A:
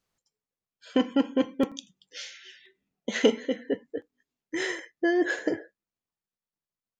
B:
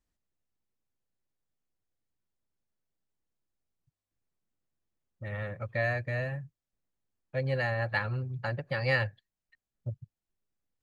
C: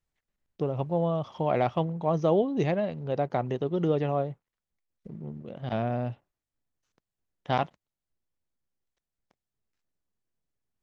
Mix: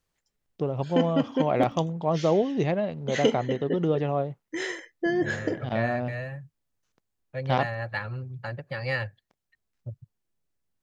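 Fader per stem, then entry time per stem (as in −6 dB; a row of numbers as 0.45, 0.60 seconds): −1.5, −1.5, +1.0 decibels; 0.00, 0.00, 0.00 seconds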